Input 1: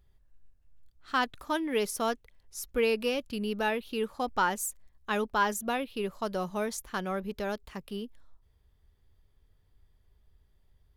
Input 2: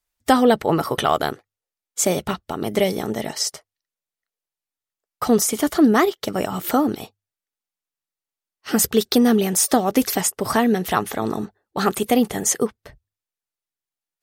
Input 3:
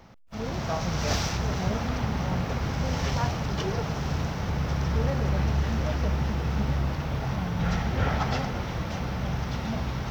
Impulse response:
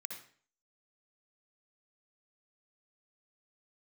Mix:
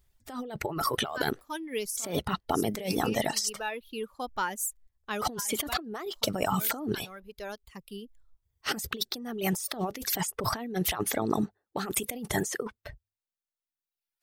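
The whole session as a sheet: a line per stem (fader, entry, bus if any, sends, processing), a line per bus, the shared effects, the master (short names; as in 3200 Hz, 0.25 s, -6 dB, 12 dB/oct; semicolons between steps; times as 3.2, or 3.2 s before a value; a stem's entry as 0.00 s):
-10.5 dB, 0.00 s, no send, high shelf 5200 Hz +8 dB
-3.5 dB, 0.00 s, no send, dry
off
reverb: off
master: reverb removal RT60 1.3 s; negative-ratio compressor -32 dBFS, ratio -1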